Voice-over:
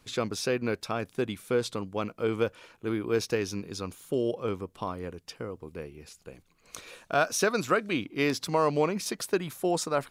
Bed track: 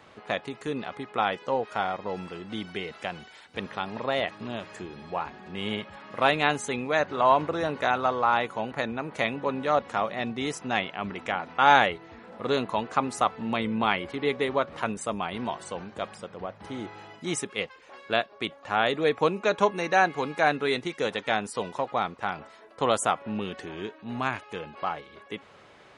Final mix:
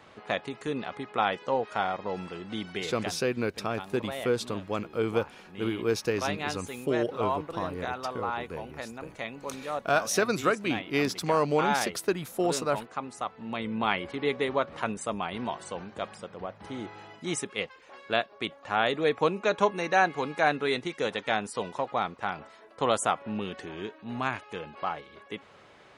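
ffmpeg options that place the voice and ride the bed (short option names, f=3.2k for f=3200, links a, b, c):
-filter_complex "[0:a]adelay=2750,volume=0dB[a];[1:a]volume=7.5dB,afade=t=out:st=2.99:d=0.21:silence=0.354813,afade=t=in:st=13.33:d=0.65:silence=0.398107[b];[a][b]amix=inputs=2:normalize=0"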